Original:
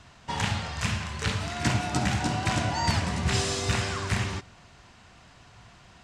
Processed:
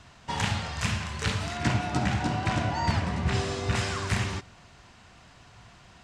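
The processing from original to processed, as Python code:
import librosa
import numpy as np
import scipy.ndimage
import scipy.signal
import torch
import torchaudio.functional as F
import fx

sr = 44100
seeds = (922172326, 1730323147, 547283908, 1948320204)

y = fx.lowpass(x, sr, hz=fx.line((1.56, 3900.0), (3.74, 1900.0)), slope=6, at=(1.56, 3.74), fade=0.02)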